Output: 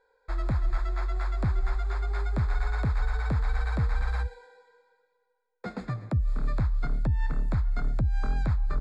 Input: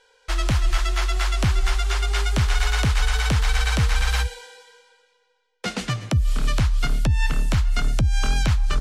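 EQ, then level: boxcar filter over 15 samples; -6.0 dB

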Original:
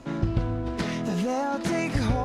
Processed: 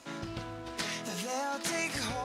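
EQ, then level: tilt EQ +3.5 dB/octave; hum notches 50/100/150/200/250/300/350/400/450/500 Hz; -5.0 dB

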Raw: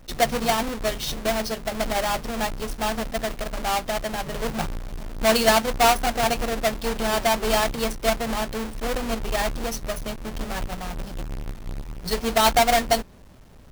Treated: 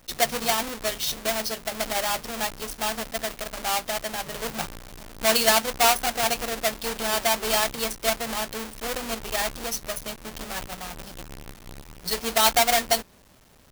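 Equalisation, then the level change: tilt EQ +2 dB/octave; -2.5 dB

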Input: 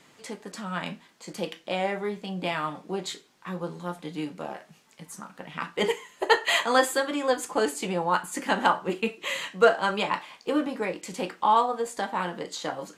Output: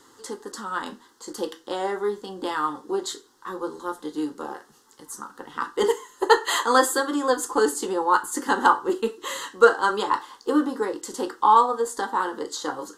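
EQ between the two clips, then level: static phaser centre 640 Hz, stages 6; +6.5 dB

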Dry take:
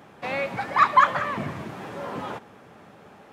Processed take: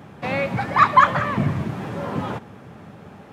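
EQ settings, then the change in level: high-pass 81 Hz; tone controls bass +5 dB, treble -1 dB; bass shelf 150 Hz +11 dB; +3.0 dB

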